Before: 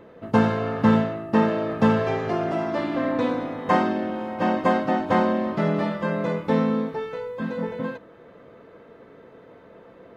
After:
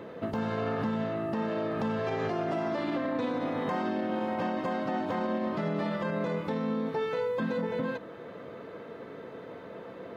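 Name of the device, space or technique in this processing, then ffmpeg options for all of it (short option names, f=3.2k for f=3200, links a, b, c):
broadcast voice chain: -af "highpass=91,deesser=0.95,acompressor=threshold=-31dB:ratio=4,equalizer=f=4k:t=o:w=0.77:g=2.5,alimiter=level_in=3dB:limit=-24dB:level=0:latency=1:release=43,volume=-3dB,volume=4.5dB"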